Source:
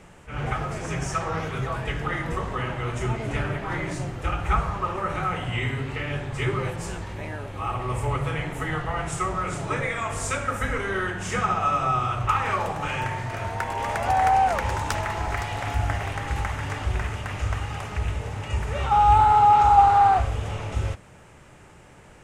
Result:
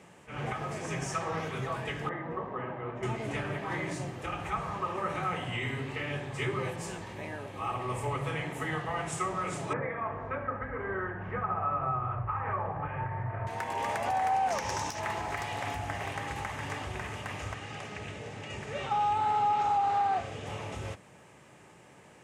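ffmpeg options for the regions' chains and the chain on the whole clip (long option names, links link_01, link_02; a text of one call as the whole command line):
ffmpeg -i in.wav -filter_complex "[0:a]asettb=1/sr,asplit=3[link_01][link_02][link_03];[link_01]atrim=end=2.094[link_04];[link_02]atrim=start=2.09:end=3.03,asetpts=PTS-STARTPTS,afade=type=in:duration=0.004:curve=qsin,afade=type=out:start_time=0.936:duration=0.004:curve=qsin,lowpass=1300,lowshelf=frequency=120:gain=-10[link_05];[link_03]atrim=start=3.026[link_06];[link_04][link_05]acrossfade=duration=0.004:curve1=hsin:curve2=qsin[link_07];[link_07][link_06]acrossfade=duration=0.004:curve1=qsin:curve2=hsin,asettb=1/sr,asplit=3[link_08][link_09][link_10];[link_08]atrim=end=9.734[link_11];[link_09]atrim=start=9.73:end=13.47,asetpts=PTS-STARTPTS,afade=type=in:duration=0.004:curve=qsin,afade=type=out:start_time=3.736:duration=0.004:curve=qsin,lowpass=frequency=1700:width=0.5412,lowpass=frequency=1700:width=1.3066,asubboost=boost=10.5:cutoff=82[link_12];[link_10]atrim=start=13.466[link_13];[link_11][link_12]acrossfade=duration=0.004:curve1=hsin:curve2=qsin[link_14];[link_14][link_13]acrossfade=duration=0.004:curve1=qsin:curve2=hsin,asettb=1/sr,asplit=3[link_15][link_16][link_17];[link_15]atrim=end=14.514[link_18];[link_16]atrim=start=14.51:end=15,asetpts=PTS-STARTPTS,afade=type=in:duration=0.004:curve=qsin,afade=type=out:start_time=0.486:duration=0.004:curve=qsin,equalizer=frequency=5700:width=2.6:gain=14,aeval=exprs='clip(val(0),-1,0.15)':channel_layout=same[link_19];[link_17]atrim=start=14.996[link_20];[link_18][link_19]acrossfade=duration=0.004:curve1=hsin:curve2=qsin[link_21];[link_21][link_20]acrossfade=duration=0.004:curve1=qsin:curve2=hsin,asettb=1/sr,asplit=3[link_22][link_23][link_24];[link_22]atrim=end=17.544[link_25];[link_23]atrim=start=17.54:end=20.47,asetpts=PTS-STARTPTS,afade=type=in:duration=0.004:curve=qsin,afade=type=out:start_time=2.926:duration=0.004:curve=qsin,highpass=110,lowpass=7800,equalizer=frequency=980:width=2.4:gain=-7[link_26];[link_24]atrim=start=20.466[link_27];[link_25][link_26]acrossfade=duration=0.004:curve1=hsin:curve2=qsin[link_28];[link_28][link_27]acrossfade=duration=0.004:curve1=qsin:curve2=hsin,bandreject=frequency=1400:width=9.3,alimiter=limit=-16.5dB:level=0:latency=1:release=143,highpass=140,volume=-4dB" out.wav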